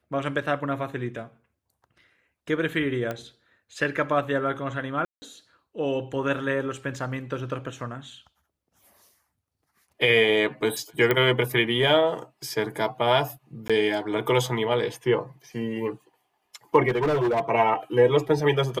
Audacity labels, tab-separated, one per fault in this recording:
3.110000	3.110000	click −17 dBFS
5.050000	5.220000	drop-out 170 ms
11.110000	11.110000	click −9 dBFS
13.680000	13.700000	drop-out 16 ms
16.880000	17.500000	clipping −19.5 dBFS

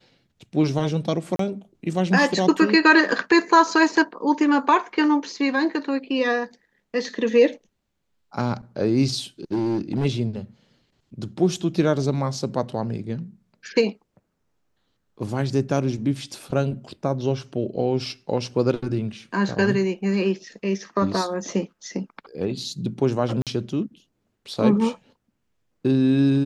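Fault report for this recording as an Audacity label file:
1.360000	1.390000	drop-out 33 ms
9.520000	10.060000	clipping −19 dBFS
23.420000	23.470000	drop-out 47 ms

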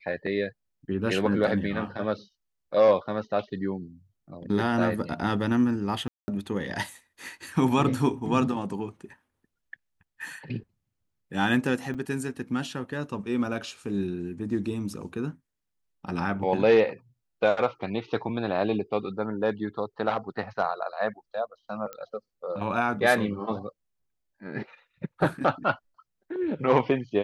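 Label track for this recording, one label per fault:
6.080000	6.280000	drop-out 200 ms
11.940000	11.950000	drop-out 6.2 ms
21.930000	21.930000	click −21 dBFS

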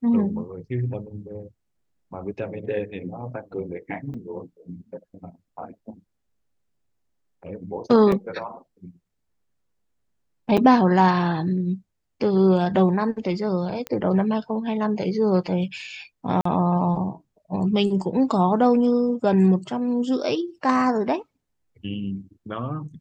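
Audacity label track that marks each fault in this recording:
4.140000	4.140000	drop-out 4.9 ms
8.120000	8.120000	drop-out 2.7 ms
10.570000	10.580000	drop-out 5.8 ms
13.870000	13.870000	click −15 dBFS
16.410000	16.450000	drop-out 44 ms

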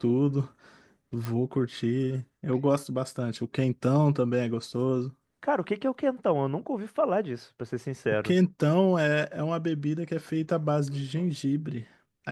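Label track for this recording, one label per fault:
1.250000	1.250000	click

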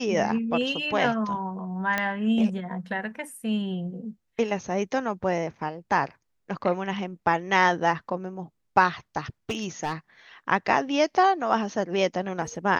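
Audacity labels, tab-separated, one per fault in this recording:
1.980000	1.980000	click −11 dBFS
9.490000	9.930000	clipping −23.5 dBFS

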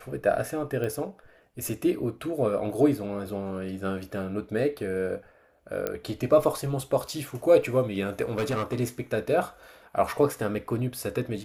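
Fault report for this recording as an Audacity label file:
0.840000	0.840000	click −20 dBFS
5.870000	5.870000	click −14 dBFS
8.240000	8.800000	clipping −23.5 dBFS

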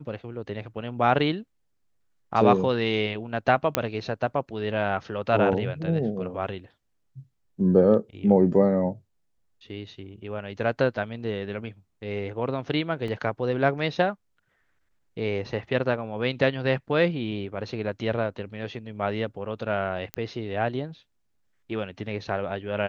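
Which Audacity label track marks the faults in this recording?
3.750000	3.750000	click −5 dBFS
13.080000	13.080000	drop-out 2.3 ms
20.140000	20.140000	click −15 dBFS

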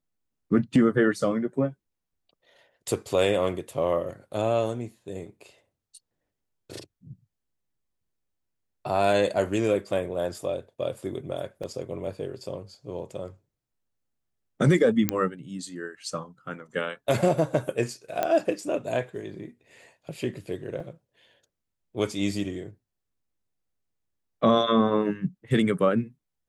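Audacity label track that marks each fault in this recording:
11.630000	11.640000	drop-out 5.4 ms
15.090000	15.090000	click −6 dBFS
18.230000	18.230000	click −12 dBFS
20.800000	20.800000	drop-out 3.6 ms

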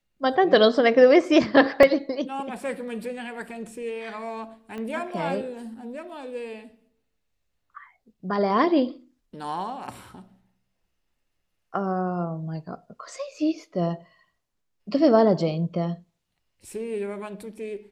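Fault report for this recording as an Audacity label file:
1.830000	1.830000	drop-out 3.1 ms
4.780000	4.780000	click −24 dBFS

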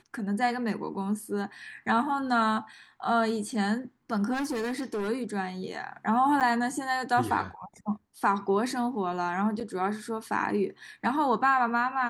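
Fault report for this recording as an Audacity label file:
4.330000	5.090000	clipping −27.5 dBFS
6.400000	6.410000	drop-out 7.8 ms
9.600000	9.610000	drop-out 6.6 ms

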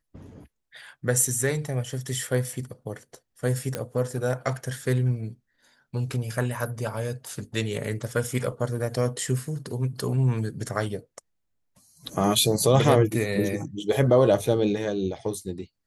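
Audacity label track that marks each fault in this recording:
3.750000	3.750000	click −13 dBFS

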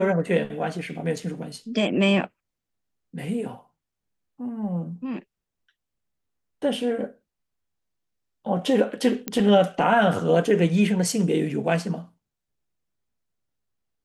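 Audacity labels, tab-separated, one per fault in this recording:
9.280000	9.280000	click −10 dBFS

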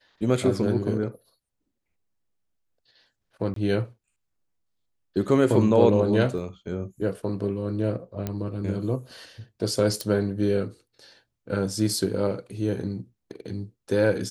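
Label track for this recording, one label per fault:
3.540000	3.560000	drop-out 23 ms
6.380000	6.380000	drop-out 3.9 ms
8.270000	8.270000	click −15 dBFS
10.010000	10.010000	click

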